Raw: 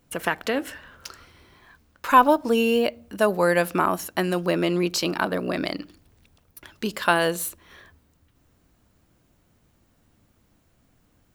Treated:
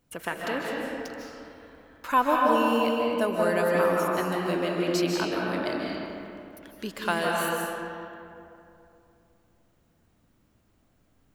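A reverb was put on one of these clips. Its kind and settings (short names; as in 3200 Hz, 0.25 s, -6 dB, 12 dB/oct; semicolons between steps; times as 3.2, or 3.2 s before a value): digital reverb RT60 2.8 s, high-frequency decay 0.5×, pre-delay 0.115 s, DRR -2.5 dB; gain -7.5 dB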